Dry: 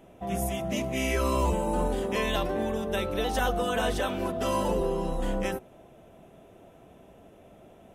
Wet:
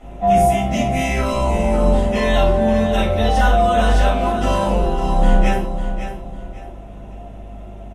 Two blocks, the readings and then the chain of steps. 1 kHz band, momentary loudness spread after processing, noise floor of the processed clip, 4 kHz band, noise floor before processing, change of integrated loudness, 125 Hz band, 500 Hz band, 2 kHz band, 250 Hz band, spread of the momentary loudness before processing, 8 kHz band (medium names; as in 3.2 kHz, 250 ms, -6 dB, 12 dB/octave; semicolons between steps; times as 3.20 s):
+13.0 dB, 21 LU, -35 dBFS, +7.0 dB, -54 dBFS, +11.0 dB, +13.5 dB, +10.5 dB, +9.0 dB, +11.0 dB, 4 LU, +5.5 dB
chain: low-pass 9 kHz 12 dB/octave; gain riding 0.5 s; hum 50 Hz, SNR 21 dB; on a send: feedback delay 550 ms, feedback 27%, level -10 dB; on the sum: simulated room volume 390 m³, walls furnished, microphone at 6.7 m; trim -1.5 dB